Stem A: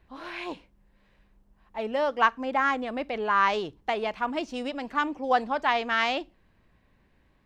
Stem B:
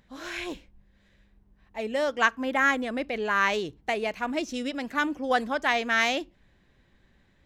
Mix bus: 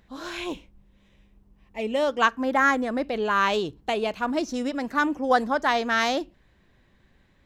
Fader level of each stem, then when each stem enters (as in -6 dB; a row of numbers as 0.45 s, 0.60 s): -2.5 dB, +0.5 dB; 0.00 s, 0.00 s